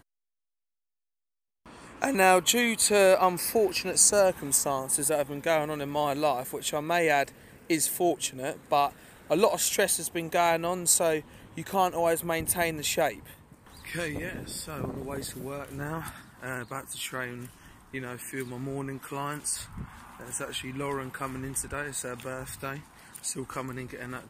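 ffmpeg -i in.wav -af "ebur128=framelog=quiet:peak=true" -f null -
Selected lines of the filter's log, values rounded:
Integrated loudness:
  I:         -27.6 LUFS
  Threshold: -38.2 LUFS
Loudness range:
  LRA:        13.1 LU
  Threshold: -48.1 LUFS
  LRA low:   -36.5 LUFS
  LRA high:  -23.4 LUFS
True peak:
  Peak:       -7.4 dBFS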